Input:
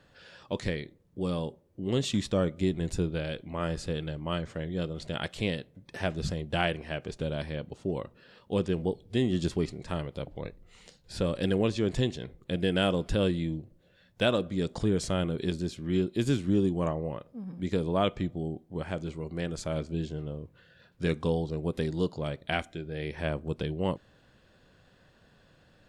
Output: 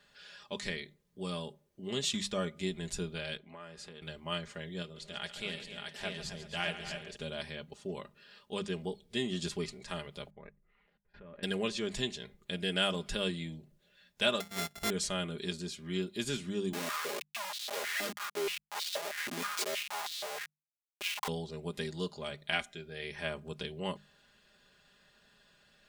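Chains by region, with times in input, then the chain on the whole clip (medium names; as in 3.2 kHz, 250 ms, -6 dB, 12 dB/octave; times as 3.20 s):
3.37–4.02 s: high-pass 230 Hz 6 dB/octave + compression 4:1, threshold -37 dBFS + treble shelf 2.8 kHz -10 dB
4.82–7.16 s: flange 1.2 Hz, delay 3.3 ms, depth 7.7 ms, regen -82% + multi-tap echo 140/263/378/623 ms -12/-11.5/-18/-3.5 dB
10.30–11.43 s: level held to a coarse grid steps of 21 dB + low-pass 2 kHz 24 dB/octave
14.40–14.90 s: sorted samples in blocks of 64 samples + upward expansion, over -48 dBFS
16.73–21.28 s: Schmitt trigger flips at -42 dBFS + step-sequenced high-pass 6.3 Hz 270–3800 Hz
whole clip: tilt shelf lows -6.5 dB, about 1.1 kHz; hum notches 50/100/150/200 Hz; comb 4.9 ms, depth 67%; trim -5 dB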